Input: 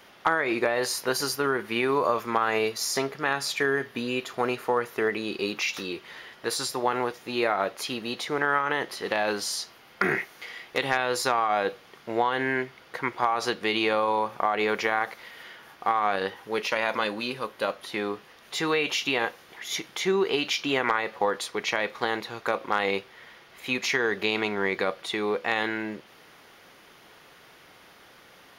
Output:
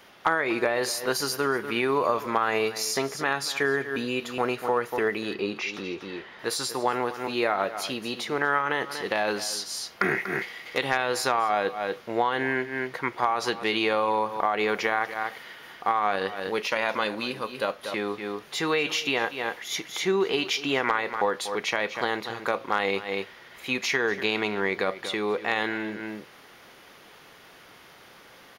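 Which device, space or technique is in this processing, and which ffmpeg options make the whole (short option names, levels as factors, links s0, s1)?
ducked delay: -filter_complex "[0:a]asettb=1/sr,asplit=3[s0][s1][s2];[s0]atrim=end=5.344[s3];[s1]atrim=start=5.34:end=6.39,asetpts=PTS-STARTPTS,afade=t=in:d=0.004:c=qsin,afade=t=out:st=1.046:d=0.004:c=qsin,aemphasis=mode=reproduction:type=75fm[s4];[s2]atrim=start=6.386[s5];[s3][s4]acrossfade=d=0.004:c1=hsin:c2=qsin[s6];[s6][s5]acrossfade=d=0.004:c1=qsin:c2=hsin,asplit=3[s7][s8][s9];[s8]adelay=240,volume=0.75[s10];[s9]apad=whole_len=1271165[s11];[s10][s11]sidechaincompress=threshold=0.00891:ratio=8:attack=11:release=119[s12];[s7][s12]amix=inputs=2:normalize=0"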